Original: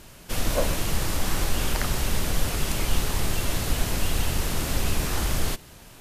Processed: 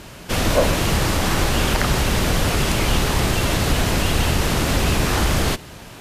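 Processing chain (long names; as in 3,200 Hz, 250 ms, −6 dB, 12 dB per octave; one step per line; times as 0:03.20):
high-pass filter 58 Hz 6 dB per octave
high-shelf EQ 6,900 Hz −10 dB
in parallel at −1.5 dB: brickwall limiter −20.5 dBFS, peak gain reduction 8 dB
on the sum: level +5.5 dB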